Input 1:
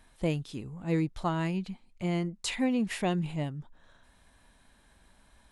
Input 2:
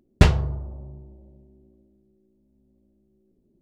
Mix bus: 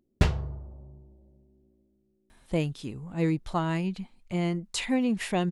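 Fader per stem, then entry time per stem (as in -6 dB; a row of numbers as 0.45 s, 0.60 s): +2.0 dB, -8.0 dB; 2.30 s, 0.00 s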